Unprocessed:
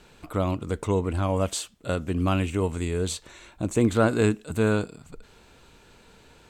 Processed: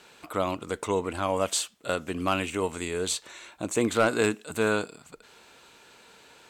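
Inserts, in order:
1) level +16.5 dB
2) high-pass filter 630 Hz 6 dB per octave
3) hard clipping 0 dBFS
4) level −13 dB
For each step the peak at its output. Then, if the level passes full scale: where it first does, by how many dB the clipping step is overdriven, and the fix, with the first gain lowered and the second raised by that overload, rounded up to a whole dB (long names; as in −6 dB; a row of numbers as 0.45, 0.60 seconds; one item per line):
+9.0, +6.5, 0.0, −13.0 dBFS
step 1, 6.5 dB
step 1 +9.5 dB, step 4 −6 dB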